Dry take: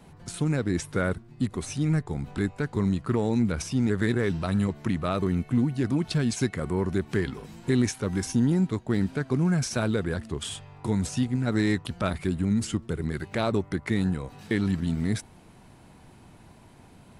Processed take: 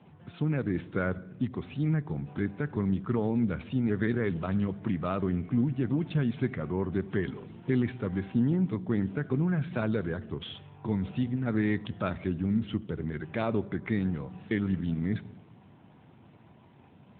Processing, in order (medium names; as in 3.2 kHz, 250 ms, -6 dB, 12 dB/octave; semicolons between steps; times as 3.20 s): on a send at -16 dB: reverberation RT60 0.95 s, pre-delay 4 ms; on the sum: trim -3 dB; AMR-NB 12.2 kbps 8 kHz